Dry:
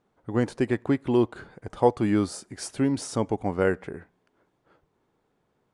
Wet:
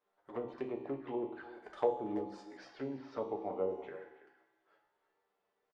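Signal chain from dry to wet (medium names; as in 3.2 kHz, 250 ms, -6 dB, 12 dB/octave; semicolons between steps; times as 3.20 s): low-pass that closes with the level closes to 490 Hz, closed at -18 dBFS; three-band isolator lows -22 dB, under 410 Hz, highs -12 dB, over 6 kHz; feedback comb 65 Hz, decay 1.3 s, harmonics all, mix 80%; touch-sensitive flanger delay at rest 10.7 ms, full sweep at -43 dBFS; 2.57–3.70 s: distance through air 260 m; speakerphone echo 330 ms, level -14 dB; reverberation RT60 0.35 s, pre-delay 5 ms, DRR 4 dB; trim +5.5 dB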